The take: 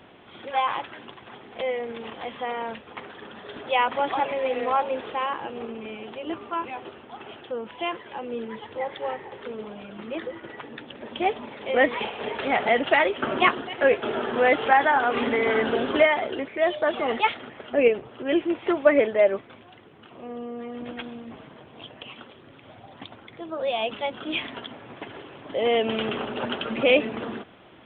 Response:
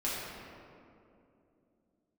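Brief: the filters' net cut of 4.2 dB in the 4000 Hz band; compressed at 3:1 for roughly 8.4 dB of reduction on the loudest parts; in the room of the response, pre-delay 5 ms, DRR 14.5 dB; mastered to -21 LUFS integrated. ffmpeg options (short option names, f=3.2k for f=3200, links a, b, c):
-filter_complex "[0:a]equalizer=f=4k:t=o:g=-6.5,acompressor=threshold=-24dB:ratio=3,asplit=2[a][b];[1:a]atrim=start_sample=2205,adelay=5[c];[b][c]afir=irnorm=-1:irlink=0,volume=-21dB[d];[a][d]amix=inputs=2:normalize=0,volume=9dB"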